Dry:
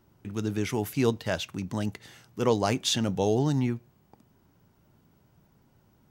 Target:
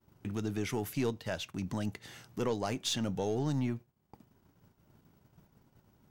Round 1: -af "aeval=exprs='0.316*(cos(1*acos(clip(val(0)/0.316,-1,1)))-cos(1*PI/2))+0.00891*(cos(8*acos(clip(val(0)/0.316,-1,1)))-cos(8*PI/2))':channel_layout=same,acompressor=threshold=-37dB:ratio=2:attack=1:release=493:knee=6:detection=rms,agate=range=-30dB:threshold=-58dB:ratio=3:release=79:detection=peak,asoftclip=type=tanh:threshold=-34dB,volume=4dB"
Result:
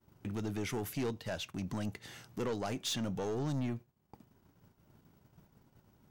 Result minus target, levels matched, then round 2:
soft clipping: distortion +12 dB
-af "aeval=exprs='0.316*(cos(1*acos(clip(val(0)/0.316,-1,1)))-cos(1*PI/2))+0.00891*(cos(8*acos(clip(val(0)/0.316,-1,1)))-cos(8*PI/2))':channel_layout=same,acompressor=threshold=-37dB:ratio=2:attack=1:release=493:knee=6:detection=rms,agate=range=-30dB:threshold=-58dB:ratio=3:release=79:detection=peak,asoftclip=type=tanh:threshold=-24.5dB,volume=4dB"

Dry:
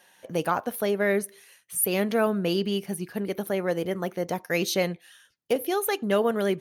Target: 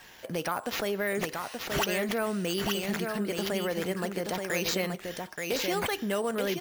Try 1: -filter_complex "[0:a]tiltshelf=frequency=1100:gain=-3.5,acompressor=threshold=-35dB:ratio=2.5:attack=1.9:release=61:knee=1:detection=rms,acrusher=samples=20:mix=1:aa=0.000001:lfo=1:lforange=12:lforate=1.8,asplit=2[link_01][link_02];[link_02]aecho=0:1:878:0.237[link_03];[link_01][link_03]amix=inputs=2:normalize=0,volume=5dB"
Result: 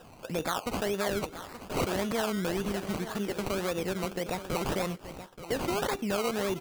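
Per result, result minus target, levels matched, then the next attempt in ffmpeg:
echo-to-direct −8 dB; sample-and-hold swept by an LFO: distortion +8 dB
-filter_complex "[0:a]tiltshelf=frequency=1100:gain=-3.5,acompressor=threshold=-35dB:ratio=2.5:attack=1.9:release=61:knee=1:detection=rms,acrusher=samples=20:mix=1:aa=0.000001:lfo=1:lforange=12:lforate=1.8,asplit=2[link_01][link_02];[link_02]aecho=0:1:878:0.596[link_03];[link_01][link_03]amix=inputs=2:normalize=0,volume=5dB"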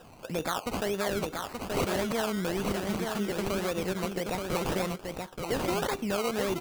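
sample-and-hold swept by an LFO: distortion +8 dB
-filter_complex "[0:a]tiltshelf=frequency=1100:gain=-3.5,acompressor=threshold=-35dB:ratio=2.5:attack=1.9:release=61:knee=1:detection=rms,acrusher=samples=4:mix=1:aa=0.000001:lfo=1:lforange=2.4:lforate=1.8,asplit=2[link_01][link_02];[link_02]aecho=0:1:878:0.596[link_03];[link_01][link_03]amix=inputs=2:normalize=0,volume=5dB"

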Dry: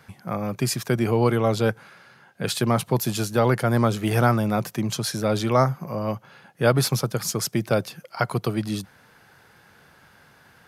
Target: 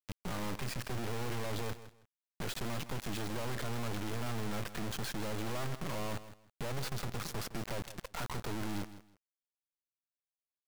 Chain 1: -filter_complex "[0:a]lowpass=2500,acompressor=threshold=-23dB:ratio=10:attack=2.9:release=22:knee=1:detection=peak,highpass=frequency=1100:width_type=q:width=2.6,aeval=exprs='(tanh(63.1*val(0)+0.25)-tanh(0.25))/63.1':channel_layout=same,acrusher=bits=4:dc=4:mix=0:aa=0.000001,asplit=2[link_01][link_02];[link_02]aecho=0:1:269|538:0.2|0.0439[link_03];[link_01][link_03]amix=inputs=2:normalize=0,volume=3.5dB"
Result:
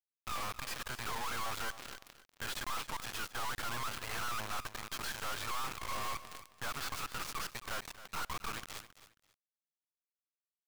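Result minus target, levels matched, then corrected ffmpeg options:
echo 108 ms late; 1,000 Hz band +4.0 dB
-filter_complex "[0:a]lowpass=2500,acompressor=threshold=-23dB:ratio=10:attack=2.9:release=22:knee=1:detection=peak,aeval=exprs='(tanh(63.1*val(0)+0.25)-tanh(0.25))/63.1':channel_layout=same,acrusher=bits=4:dc=4:mix=0:aa=0.000001,asplit=2[link_01][link_02];[link_02]aecho=0:1:161|322:0.2|0.0439[link_03];[link_01][link_03]amix=inputs=2:normalize=0,volume=3.5dB"

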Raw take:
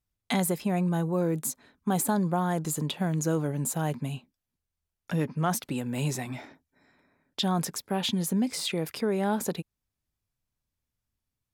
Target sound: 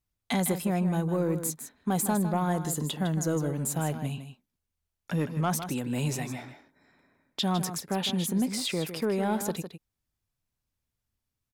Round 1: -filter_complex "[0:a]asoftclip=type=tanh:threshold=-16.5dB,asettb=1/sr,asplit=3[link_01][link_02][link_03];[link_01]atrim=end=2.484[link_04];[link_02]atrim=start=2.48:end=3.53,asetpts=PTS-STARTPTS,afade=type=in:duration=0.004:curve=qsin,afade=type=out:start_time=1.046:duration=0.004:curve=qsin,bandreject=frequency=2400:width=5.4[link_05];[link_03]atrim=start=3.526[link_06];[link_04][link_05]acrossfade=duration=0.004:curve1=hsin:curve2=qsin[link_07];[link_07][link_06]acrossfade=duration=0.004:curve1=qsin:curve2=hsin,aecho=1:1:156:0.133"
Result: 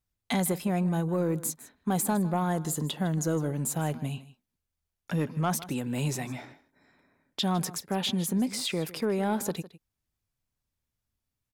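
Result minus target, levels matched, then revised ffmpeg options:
echo-to-direct −7.5 dB
-filter_complex "[0:a]asoftclip=type=tanh:threshold=-16.5dB,asettb=1/sr,asplit=3[link_01][link_02][link_03];[link_01]atrim=end=2.484[link_04];[link_02]atrim=start=2.48:end=3.53,asetpts=PTS-STARTPTS,afade=type=in:duration=0.004:curve=qsin,afade=type=out:start_time=1.046:duration=0.004:curve=qsin,bandreject=frequency=2400:width=5.4[link_05];[link_03]atrim=start=3.526[link_06];[link_04][link_05]acrossfade=duration=0.004:curve1=hsin:curve2=qsin[link_07];[link_07][link_06]acrossfade=duration=0.004:curve1=qsin:curve2=hsin,aecho=1:1:156:0.316"

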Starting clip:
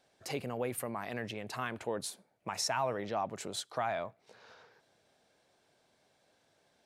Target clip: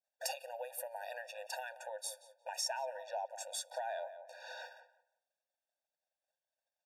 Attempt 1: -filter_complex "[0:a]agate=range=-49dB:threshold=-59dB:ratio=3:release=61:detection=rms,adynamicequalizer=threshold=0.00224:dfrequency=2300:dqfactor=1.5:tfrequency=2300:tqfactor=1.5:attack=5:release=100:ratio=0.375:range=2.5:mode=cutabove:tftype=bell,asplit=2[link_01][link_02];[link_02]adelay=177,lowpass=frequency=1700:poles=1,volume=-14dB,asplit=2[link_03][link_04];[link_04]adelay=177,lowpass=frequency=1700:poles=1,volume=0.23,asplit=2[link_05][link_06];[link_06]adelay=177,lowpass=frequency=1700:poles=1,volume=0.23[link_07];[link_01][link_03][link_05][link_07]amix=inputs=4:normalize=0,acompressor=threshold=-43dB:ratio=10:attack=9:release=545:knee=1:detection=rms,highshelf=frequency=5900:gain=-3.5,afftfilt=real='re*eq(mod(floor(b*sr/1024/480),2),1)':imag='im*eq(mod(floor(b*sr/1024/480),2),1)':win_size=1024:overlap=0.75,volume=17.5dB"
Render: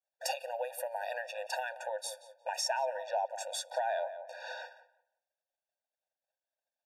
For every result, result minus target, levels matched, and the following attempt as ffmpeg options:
downward compressor: peak gain reduction −7 dB; 8,000 Hz band −4.0 dB
-filter_complex "[0:a]agate=range=-49dB:threshold=-59dB:ratio=3:release=61:detection=rms,adynamicequalizer=threshold=0.00224:dfrequency=2300:dqfactor=1.5:tfrequency=2300:tqfactor=1.5:attack=5:release=100:ratio=0.375:range=2.5:mode=cutabove:tftype=bell,asplit=2[link_01][link_02];[link_02]adelay=177,lowpass=frequency=1700:poles=1,volume=-14dB,asplit=2[link_03][link_04];[link_04]adelay=177,lowpass=frequency=1700:poles=1,volume=0.23,asplit=2[link_05][link_06];[link_06]adelay=177,lowpass=frequency=1700:poles=1,volume=0.23[link_07];[link_01][link_03][link_05][link_07]amix=inputs=4:normalize=0,acompressor=threshold=-51dB:ratio=10:attack=9:release=545:knee=1:detection=rms,highshelf=frequency=5900:gain=-3.5,afftfilt=real='re*eq(mod(floor(b*sr/1024/480),2),1)':imag='im*eq(mod(floor(b*sr/1024/480),2),1)':win_size=1024:overlap=0.75,volume=17.5dB"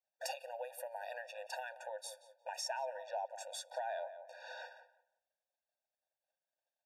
8,000 Hz band −4.0 dB
-filter_complex "[0:a]agate=range=-49dB:threshold=-59dB:ratio=3:release=61:detection=rms,adynamicequalizer=threshold=0.00224:dfrequency=2300:dqfactor=1.5:tfrequency=2300:tqfactor=1.5:attack=5:release=100:ratio=0.375:range=2.5:mode=cutabove:tftype=bell,asplit=2[link_01][link_02];[link_02]adelay=177,lowpass=frequency=1700:poles=1,volume=-14dB,asplit=2[link_03][link_04];[link_04]adelay=177,lowpass=frequency=1700:poles=1,volume=0.23,asplit=2[link_05][link_06];[link_06]adelay=177,lowpass=frequency=1700:poles=1,volume=0.23[link_07];[link_01][link_03][link_05][link_07]amix=inputs=4:normalize=0,acompressor=threshold=-51dB:ratio=10:attack=9:release=545:knee=1:detection=rms,highshelf=frequency=5900:gain=5.5,afftfilt=real='re*eq(mod(floor(b*sr/1024/480),2),1)':imag='im*eq(mod(floor(b*sr/1024/480),2),1)':win_size=1024:overlap=0.75,volume=17.5dB"

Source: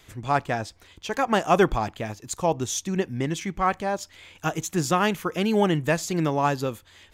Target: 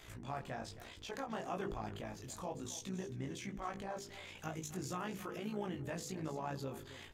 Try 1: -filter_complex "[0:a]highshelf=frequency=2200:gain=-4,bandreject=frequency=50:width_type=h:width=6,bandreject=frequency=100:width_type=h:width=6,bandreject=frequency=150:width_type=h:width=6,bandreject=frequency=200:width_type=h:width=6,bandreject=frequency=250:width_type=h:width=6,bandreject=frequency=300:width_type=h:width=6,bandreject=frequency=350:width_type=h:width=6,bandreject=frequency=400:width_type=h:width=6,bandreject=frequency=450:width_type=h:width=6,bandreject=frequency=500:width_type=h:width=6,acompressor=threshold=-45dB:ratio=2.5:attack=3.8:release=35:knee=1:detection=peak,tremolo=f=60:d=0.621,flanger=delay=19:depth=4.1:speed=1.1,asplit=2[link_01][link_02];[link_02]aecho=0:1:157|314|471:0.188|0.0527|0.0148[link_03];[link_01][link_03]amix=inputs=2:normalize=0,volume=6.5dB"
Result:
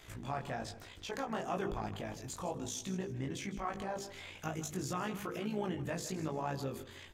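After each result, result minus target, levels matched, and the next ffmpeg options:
echo 112 ms early; downward compressor: peak gain reduction −4 dB
-filter_complex "[0:a]highshelf=frequency=2200:gain=-4,bandreject=frequency=50:width_type=h:width=6,bandreject=frequency=100:width_type=h:width=6,bandreject=frequency=150:width_type=h:width=6,bandreject=frequency=200:width_type=h:width=6,bandreject=frequency=250:width_type=h:width=6,bandreject=frequency=300:width_type=h:width=6,bandreject=frequency=350:width_type=h:width=6,bandreject=frequency=400:width_type=h:width=6,bandreject=frequency=450:width_type=h:width=6,bandreject=frequency=500:width_type=h:width=6,acompressor=threshold=-45dB:ratio=2.5:attack=3.8:release=35:knee=1:detection=peak,tremolo=f=60:d=0.621,flanger=delay=19:depth=4.1:speed=1.1,asplit=2[link_01][link_02];[link_02]aecho=0:1:269|538|807:0.188|0.0527|0.0148[link_03];[link_01][link_03]amix=inputs=2:normalize=0,volume=6.5dB"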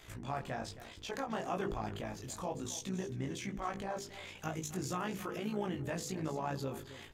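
downward compressor: peak gain reduction −4 dB
-filter_complex "[0:a]highshelf=frequency=2200:gain=-4,bandreject=frequency=50:width_type=h:width=6,bandreject=frequency=100:width_type=h:width=6,bandreject=frequency=150:width_type=h:width=6,bandreject=frequency=200:width_type=h:width=6,bandreject=frequency=250:width_type=h:width=6,bandreject=frequency=300:width_type=h:width=6,bandreject=frequency=350:width_type=h:width=6,bandreject=frequency=400:width_type=h:width=6,bandreject=frequency=450:width_type=h:width=6,bandreject=frequency=500:width_type=h:width=6,acompressor=threshold=-51.5dB:ratio=2.5:attack=3.8:release=35:knee=1:detection=peak,tremolo=f=60:d=0.621,flanger=delay=19:depth=4.1:speed=1.1,asplit=2[link_01][link_02];[link_02]aecho=0:1:269|538|807:0.188|0.0527|0.0148[link_03];[link_01][link_03]amix=inputs=2:normalize=0,volume=6.5dB"

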